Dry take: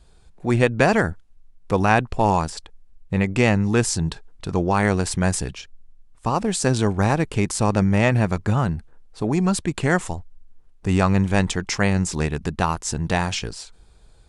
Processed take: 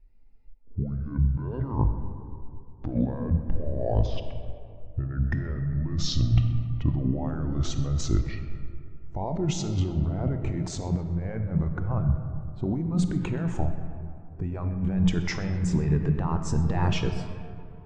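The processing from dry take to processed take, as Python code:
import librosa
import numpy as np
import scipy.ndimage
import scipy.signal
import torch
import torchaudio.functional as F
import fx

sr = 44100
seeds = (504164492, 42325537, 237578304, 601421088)

p1 = fx.speed_glide(x, sr, from_pct=56, to_pct=104)
p2 = fx.lowpass(p1, sr, hz=2800.0, slope=6)
p3 = fx.hum_notches(p2, sr, base_hz=60, count=3)
p4 = fx.over_compress(p3, sr, threshold_db=-26.0, ratio=-1.0)
p5 = p4 + fx.echo_feedback(p4, sr, ms=128, feedback_pct=56, wet_db=-18.0, dry=0)
p6 = fx.rev_freeverb(p5, sr, rt60_s=3.7, hf_ratio=0.45, predelay_ms=10, drr_db=3.5)
y = fx.spectral_expand(p6, sr, expansion=1.5)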